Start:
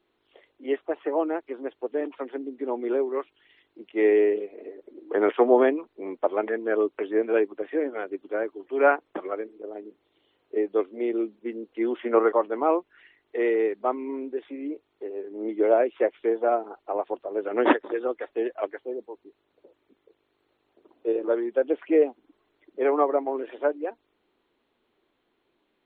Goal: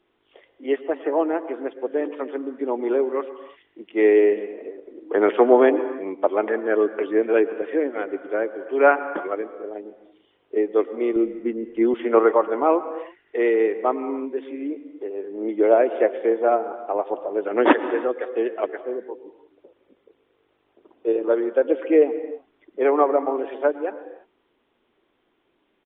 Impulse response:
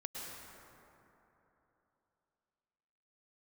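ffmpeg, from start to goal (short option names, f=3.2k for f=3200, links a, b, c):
-filter_complex "[0:a]asettb=1/sr,asplit=3[a][b][c];[a]atrim=end=11.164[d];[b]atrim=start=11.16:end=11.94,asetpts=PTS-STARTPTS,afade=t=in:d=0.004:c=qsin,afade=t=out:st=0.776:d=0.004:c=qsin,aemphasis=mode=reproduction:type=bsi[e];[c]atrim=start=11.936[f];[d][e]acrossfade=d=0.004:c1=hsin:c2=qsin[g];[g][f]acrossfade=d=0.004:c1=qsin:c2=hsin,asplit=2[h][i];[1:a]atrim=start_sample=2205,afade=t=out:st=0.4:d=0.01,atrim=end_sample=18081[j];[i][j]afir=irnorm=-1:irlink=0,volume=-7dB[k];[h][k]amix=inputs=2:normalize=0,aresample=8000,aresample=44100,volume=2dB"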